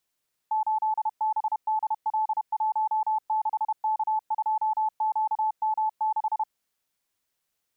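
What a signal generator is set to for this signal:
Morse code "8BDL16K2QM6" 31 words per minute 868 Hz −22 dBFS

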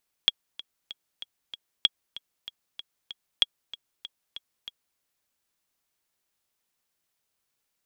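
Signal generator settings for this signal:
click track 191 BPM, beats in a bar 5, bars 3, 3,320 Hz, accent 18.5 dB −6 dBFS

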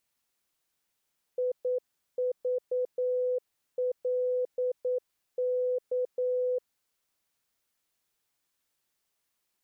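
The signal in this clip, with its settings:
Morse code "IVLK" 9 words per minute 501 Hz −25.5 dBFS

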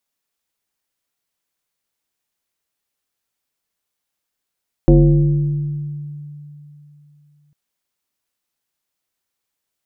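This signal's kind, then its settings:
two-operator FM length 2.65 s, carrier 147 Hz, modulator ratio 1.31, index 1.5, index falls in 2.48 s exponential, decay 3.20 s, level −5 dB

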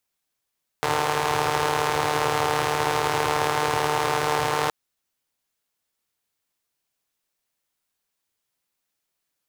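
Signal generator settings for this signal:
pulse-train model of a four-cylinder engine, steady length 3.87 s, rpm 4,500, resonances 120/460/820 Hz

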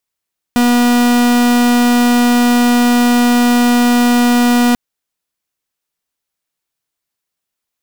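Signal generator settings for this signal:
pulse wave 242 Hz, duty 44% −10.5 dBFS 4.19 s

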